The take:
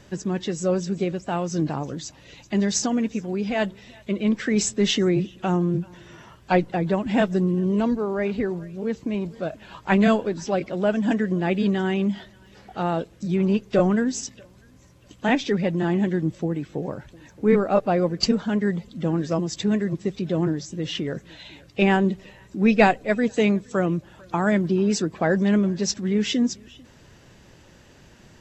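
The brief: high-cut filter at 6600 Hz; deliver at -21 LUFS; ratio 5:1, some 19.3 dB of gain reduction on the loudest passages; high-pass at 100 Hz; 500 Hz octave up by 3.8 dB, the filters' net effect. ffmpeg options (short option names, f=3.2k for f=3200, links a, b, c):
-af "highpass=100,lowpass=6.6k,equalizer=f=500:t=o:g=5,acompressor=threshold=-32dB:ratio=5,volume=14.5dB"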